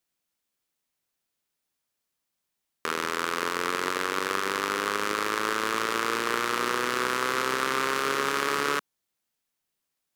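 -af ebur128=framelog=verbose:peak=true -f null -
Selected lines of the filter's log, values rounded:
Integrated loudness:
  I:         -27.1 LUFS
  Threshold: -37.1 LUFS
Loudness range:
  LRA:         8.0 LU
  Threshold: -48.2 LUFS
  LRA low:   -34.4 LUFS
  LRA high:  -26.4 LUFS
True peak:
  Peak:       -8.3 dBFS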